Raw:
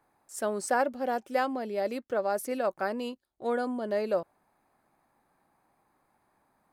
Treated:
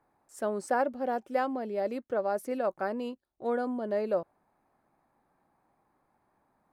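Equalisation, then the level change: treble shelf 2.1 kHz -9.5 dB; 0.0 dB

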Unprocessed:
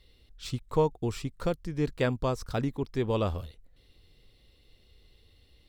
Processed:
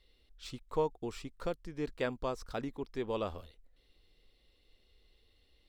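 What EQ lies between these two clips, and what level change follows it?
peaking EQ 110 Hz -11.5 dB 1.6 oct; treble shelf 6.1 kHz -5 dB; -5.0 dB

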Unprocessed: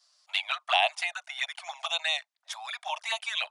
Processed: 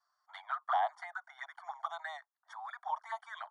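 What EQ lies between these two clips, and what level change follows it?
Savitzky-Golay filter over 41 samples; high-pass 670 Hz 24 dB/octave; static phaser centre 1.1 kHz, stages 4; 0.0 dB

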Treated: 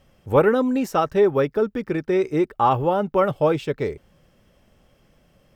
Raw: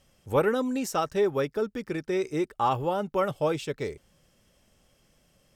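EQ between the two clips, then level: peaking EQ 8.1 kHz -12.5 dB 2.1 oct; +7.5 dB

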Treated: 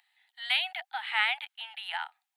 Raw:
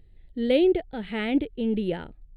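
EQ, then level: steep high-pass 770 Hz 96 dB/octave; +7.5 dB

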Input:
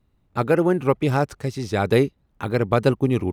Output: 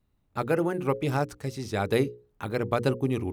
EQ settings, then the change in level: treble shelf 7 kHz +5.5 dB; hum notches 60/120/180/240/300/360/420/480/540 Hz; -6.0 dB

